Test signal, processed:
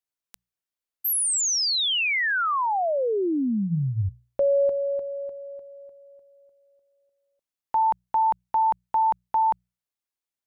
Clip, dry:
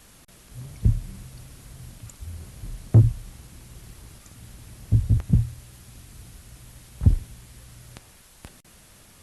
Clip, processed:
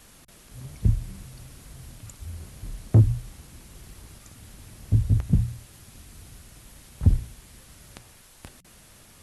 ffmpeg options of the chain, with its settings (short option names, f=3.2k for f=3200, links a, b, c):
-af "bandreject=f=60:t=h:w=6,bandreject=f=120:t=h:w=6,bandreject=f=180:t=h:w=6"